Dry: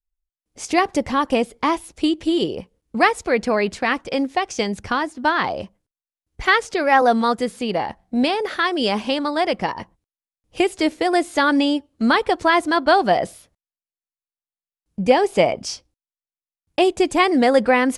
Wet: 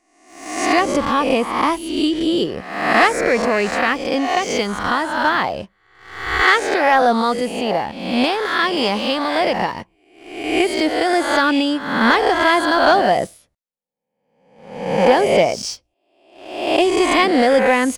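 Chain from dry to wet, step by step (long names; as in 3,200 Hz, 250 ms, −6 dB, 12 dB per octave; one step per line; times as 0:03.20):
peak hold with a rise ahead of every peak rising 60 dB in 0.91 s
leveller curve on the samples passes 1
level −4 dB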